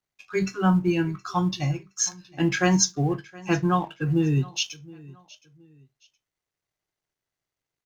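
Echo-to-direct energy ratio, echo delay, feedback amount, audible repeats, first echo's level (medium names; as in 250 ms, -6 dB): -21.5 dB, 719 ms, 31%, 2, -22.0 dB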